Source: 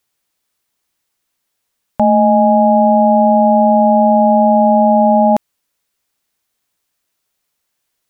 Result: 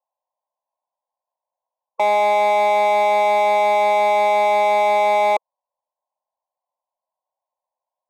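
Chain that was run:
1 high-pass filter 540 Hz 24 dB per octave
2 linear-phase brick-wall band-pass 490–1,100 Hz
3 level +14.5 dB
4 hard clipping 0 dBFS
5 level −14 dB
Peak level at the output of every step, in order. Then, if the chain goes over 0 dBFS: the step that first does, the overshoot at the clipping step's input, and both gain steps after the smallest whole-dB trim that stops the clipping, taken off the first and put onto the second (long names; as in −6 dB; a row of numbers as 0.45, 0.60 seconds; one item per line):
−6.0, −6.0, +8.5, 0.0, −14.0 dBFS
step 3, 8.5 dB
step 3 +5.5 dB, step 5 −5 dB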